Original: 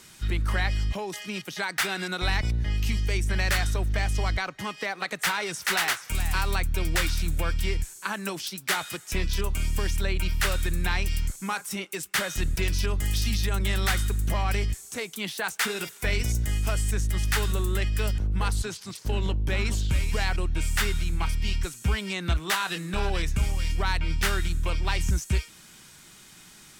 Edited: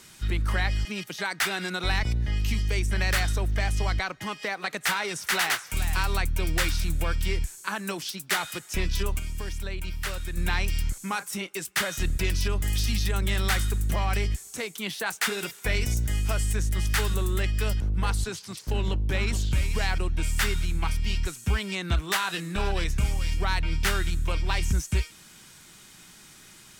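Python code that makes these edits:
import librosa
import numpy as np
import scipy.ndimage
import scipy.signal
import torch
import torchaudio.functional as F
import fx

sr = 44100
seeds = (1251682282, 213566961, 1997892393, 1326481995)

y = fx.edit(x, sr, fx.cut(start_s=0.85, length_s=0.38),
    fx.clip_gain(start_s=9.57, length_s=1.18, db=-6.5), tone=tone)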